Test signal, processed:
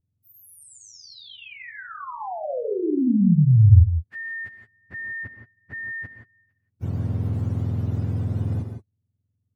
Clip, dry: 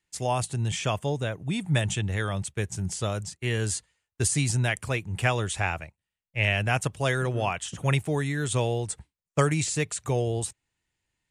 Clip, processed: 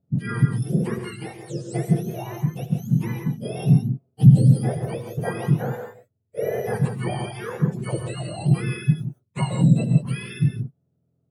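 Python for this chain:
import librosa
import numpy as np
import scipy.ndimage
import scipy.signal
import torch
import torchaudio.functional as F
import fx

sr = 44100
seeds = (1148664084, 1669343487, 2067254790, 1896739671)

y = fx.octave_mirror(x, sr, pivot_hz=1100.0)
y = fx.tilt_eq(y, sr, slope=-3.5)
y = fx.rev_gated(y, sr, seeds[0], gate_ms=190, shape='rising', drr_db=5.0)
y = F.gain(torch.from_numpy(y), -3.0).numpy()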